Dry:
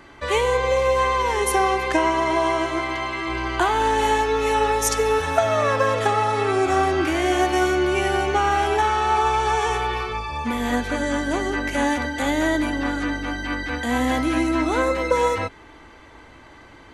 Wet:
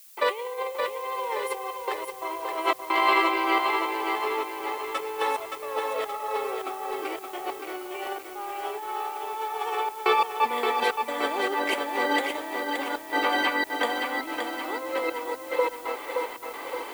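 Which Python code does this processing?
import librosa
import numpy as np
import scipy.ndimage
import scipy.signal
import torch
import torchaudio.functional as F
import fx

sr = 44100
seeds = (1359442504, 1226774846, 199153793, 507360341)

y = x + 10.0 ** (-17.0 / 20.0) * np.pad(x, (int(478 * sr / 1000.0), 0))[:len(x)]
y = fx.over_compress(y, sr, threshold_db=-28.0, ratio=-0.5)
y = fx.graphic_eq_31(y, sr, hz=(630, 1600, 6300), db=(-6, -9, -12))
y = fx.step_gate(y, sr, bpm=88, pattern='.xxxxxxxxx.x.xxx', floor_db=-60.0, edge_ms=4.5)
y = scipy.signal.sosfilt(scipy.signal.butter(4, 450.0, 'highpass', fs=sr, output='sos'), y)
y = fx.dmg_noise_colour(y, sr, seeds[0], colour='violet', level_db=-48.0)
y = fx.tilt_eq(y, sr, slope=-2.0)
y = fx.echo_crushed(y, sr, ms=572, feedback_pct=55, bits=9, wet_db=-5.0)
y = F.gain(torch.from_numpy(y), 5.0).numpy()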